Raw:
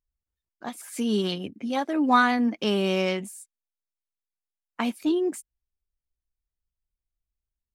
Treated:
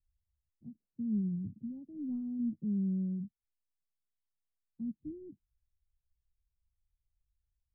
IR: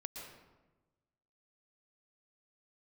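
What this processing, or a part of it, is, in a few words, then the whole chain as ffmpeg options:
the neighbour's flat through the wall: -af "lowpass=frequency=160:width=0.5412,lowpass=frequency=160:width=1.3066,equalizer=frequency=87:width_type=o:width=0.77:gain=4.5,volume=4dB"

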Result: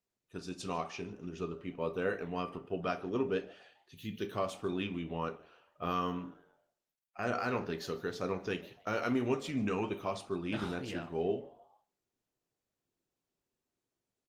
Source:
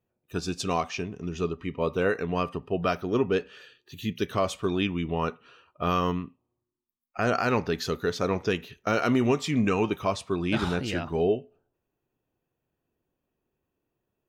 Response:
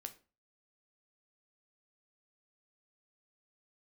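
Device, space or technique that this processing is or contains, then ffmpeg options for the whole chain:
far-field microphone of a smart speaker: -filter_complex "[0:a]lowshelf=frequency=64:gain=2,asplit=3[link_01][link_02][link_03];[link_01]afade=type=out:start_time=6.07:duration=0.02[link_04];[link_02]bandreject=frequency=54.66:width_type=h:width=4,bandreject=frequency=109.32:width_type=h:width=4,bandreject=frequency=163.98:width_type=h:width=4,bandreject=frequency=218.64:width_type=h:width=4,bandreject=frequency=273.3:width_type=h:width=4,bandreject=frequency=327.96:width_type=h:width=4,bandreject=frequency=382.62:width_type=h:width=4,bandreject=frequency=437.28:width_type=h:width=4,bandreject=frequency=491.94:width_type=h:width=4,bandreject=frequency=546.6:width_type=h:width=4,bandreject=frequency=601.26:width_type=h:width=4,bandreject=frequency=655.92:width_type=h:width=4,bandreject=frequency=710.58:width_type=h:width=4,bandreject=frequency=765.24:width_type=h:width=4,bandreject=frequency=819.9:width_type=h:width=4,bandreject=frequency=874.56:width_type=h:width=4,bandreject=frequency=929.22:width_type=h:width=4,bandreject=frequency=983.88:width_type=h:width=4,bandreject=frequency=1038.54:width_type=h:width=4,bandreject=frequency=1093.2:width_type=h:width=4,bandreject=frequency=1147.86:width_type=h:width=4,bandreject=frequency=1202.52:width_type=h:width=4,bandreject=frequency=1257.18:width_type=h:width=4,bandreject=frequency=1311.84:width_type=h:width=4,bandreject=frequency=1366.5:width_type=h:width=4,bandreject=frequency=1421.16:width_type=h:width=4,bandreject=frequency=1475.82:width_type=h:width=4,bandreject=frequency=1530.48:width_type=h:width=4,bandreject=frequency=1585.14:width_type=h:width=4,bandreject=frequency=1639.8:width_type=h:width=4,afade=type=in:start_time=6.07:duration=0.02,afade=type=out:start_time=7.67:duration=0.02[link_05];[link_03]afade=type=in:start_time=7.67:duration=0.02[link_06];[link_04][link_05][link_06]amix=inputs=3:normalize=0,asplit=4[link_07][link_08][link_09][link_10];[link_08]adelay=148,afreqshift=140,volume=-23dB[link_11];[link_09]adelay=296,afreqshift=280,volume=-30.1dB[link_12];[link_10]adelay=444,afreqshift=420,volume=-37.3dB[link_13];[link_07][link_11][link_12][link_13]amix=inputs=4:normalize=0[link_14];[1:a]atrim=start_sample=2205[link_15];[link_14][link_15]afir=irnorm=-1:irlink=0,highpass=frequency=120:poles=1,dynaudnorm=framelen=310:gausssize=3:maxgain=4.5dB,volume=-8.5dB" -ar 48000 -c:a libopus -b:a 24k

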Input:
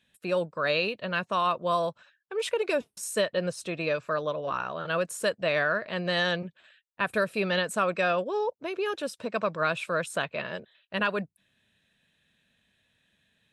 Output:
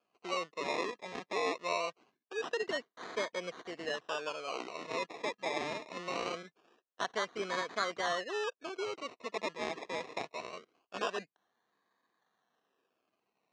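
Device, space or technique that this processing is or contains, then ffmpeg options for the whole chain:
circuit-bent sampling toy: -af "acrusher=samples=23:mix=1:aa=0.000001:lfo=1:lforange=13.8:lforate=0.23,highpass=540,equalizer=frequency=570:width_type=q:width=4:gain=-9,equalizer=frequency=870:width_type=q:width=4:gain=-9,equalizer=frequency=1400:width_type=q:width=4:gain=-8,equalizer=frequency=2200:width_type=q:width=4:gain=-5,equalizer=frequency=3400:width_type=q:width=4:gain=-7,equalizer=frequency=4800:width_type=q:width=4:gain=-7,lowpass=frequency=5100:width=0.5412,lowpass=frequency=5100:width=1.3066"

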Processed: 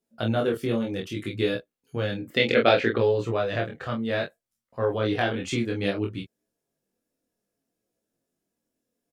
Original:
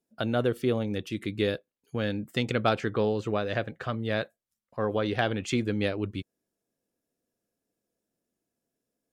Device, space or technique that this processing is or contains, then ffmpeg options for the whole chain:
double-tracked vocal: -filter_complex "[0:a]asplit=2[link_01][link_02];[link_02]adelay=26,volume=-4dB[link_03];[link_01][link_03]amix=inputs=2:normalize=0,flanger=delay=16.5:depth=6.1:speed=0.63,asettb=1/sr,asplit=3[link_04][link_05][link_06];[link_04]atrim=end=2.304[link_07];[link_05]atrim=start=2.3:end=2.98,asetpts=PTS-STARTPTS,afade=type=in:duration=0.004:curve=qsin,afade=type=out:start_time=0.676:duration=0.004:curve=qsin,equalizer=frequency=125:width_type=o:width=1:gain=-6,equalizer=frequency=250:width_type=o:width=1:gain=4,equalizer=frequency=500:width_type=o:width=1:gain=8,equalizer=frequency=1000:width_type=o:width=1:gain=-4,equalizer=frequency=2000:width_type=o:width=1:gain=8,equalizer=frequency=4000:width_type=o:width=1:gain=7,equalizer=frequency=8000:width_type=o:width=1:gain=-10[link_08];[link_06]atrim=start=2.976[link_09];[link_07][link_08]acrossfade=duration=0.004:curve1=hsin:curve2=qsin[link_10];[link_10][link_09]acrossfade=duration=0.004:curve1=qsin:curve2=hsin,volume=3.5dB"

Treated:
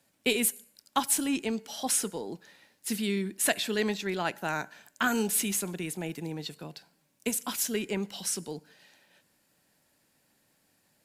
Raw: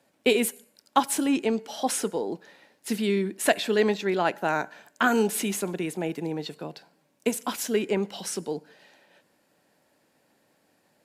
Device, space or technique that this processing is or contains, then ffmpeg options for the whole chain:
smiley-face EQ: -af "lowshelf=frequency=99:gain=9,equalizer=frequency=510:width_type=o:width=2.3:gain=-6.5,highshelf=frequency=5600:gain=7.5,volume=-2.5dB"

